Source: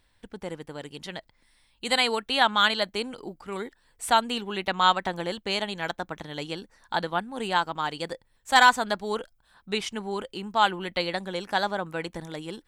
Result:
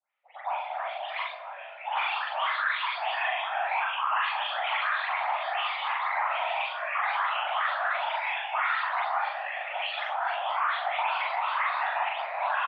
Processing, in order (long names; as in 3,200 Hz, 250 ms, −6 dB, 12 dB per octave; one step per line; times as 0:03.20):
every frequency bin delayed by itself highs late, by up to 276 ms
downward compressor 2 to 1, threshold −36 dBFS, peak gain reduction 13 dB
noise reduction from a noise print of the clip's start 20 dB
on a send at −7 dB: convolution reverb RT60 0.55 s, pre-delay 6 ms
on the sum: random phases in short frames
delay with pitch and tempo change per echo 324 ms, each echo −6 semitones, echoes 3, each echo −6 dB
brickwall limiter −28 dBFS, peak gain reduction 11 dB
single-sideband voice off tune +360 Hz 310–2,700 Hz
double-tracking delay 41 ms −2 dB
delay with a low-pass on its return 72 ms, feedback 77%, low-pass 1,800 Hz, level −13.5 dB
level +7.5 dB